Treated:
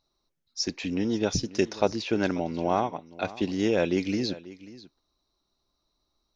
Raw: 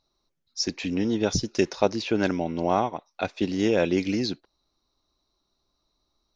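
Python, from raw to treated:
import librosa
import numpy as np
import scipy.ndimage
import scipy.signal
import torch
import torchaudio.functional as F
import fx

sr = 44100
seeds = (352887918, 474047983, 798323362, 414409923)

y = x + 10.0 ** (-18.0 / 20.0) * np.pad(x, (int(539 * sr / 1000.0), 0))[:len(x)]
y = y * 10.0 ** (-2.0 / 20.0)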